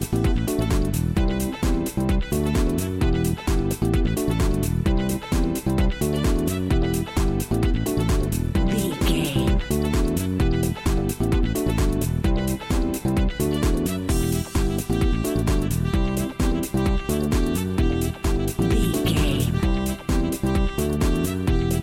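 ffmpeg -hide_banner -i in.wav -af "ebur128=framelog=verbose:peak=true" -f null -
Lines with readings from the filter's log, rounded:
Integrated loudness:
  I:         -23.2 LUFS
  Threshold: -33.2 LUFS
Loudness range:
  LRA:         0.7 LU
  Threshold: -43.2 LUFS
  LRA low:   -23.5 LUFS
  LRA high:  -22.9 LUFS
True peak:
  Peak:       -9.6 dBFS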